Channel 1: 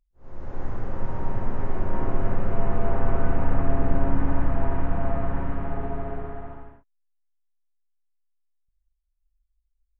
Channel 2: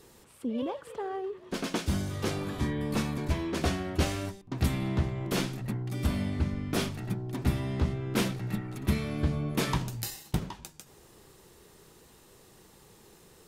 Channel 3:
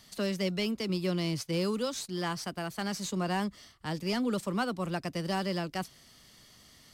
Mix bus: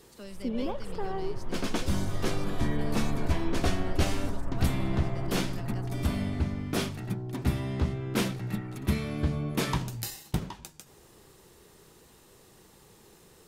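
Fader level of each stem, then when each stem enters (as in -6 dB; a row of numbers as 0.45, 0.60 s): -11.5, 0.0, -13.5 dB; 0.00, 0.00, 0.00 s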